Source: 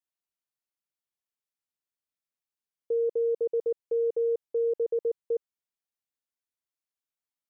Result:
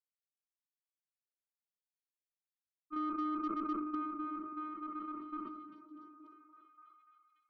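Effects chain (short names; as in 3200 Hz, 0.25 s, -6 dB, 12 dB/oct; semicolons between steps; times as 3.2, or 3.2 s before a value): gate -23 dBFS, range -42 dB; reverb RT60 1.0 s, pre-delay 3 ms, DRR -12 dB; ring modulator 770 Hz; compressor 4:1, threshold -51 dBFS, peak gain reduction 10 dB; 2.96–3.95 bell 570 Hz +8 dB 2.9 oct; added harmonics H 6 -30 dB, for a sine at -37.5 dBFS; 4.46–5.17 low shelf 320 Hz -7.5 dB; delay with a stepping band-pass 0.29 s, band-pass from 160 Hz, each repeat 0.7 oct, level -3.5 dB; sustainer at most 37 dB/s; gain +10 dB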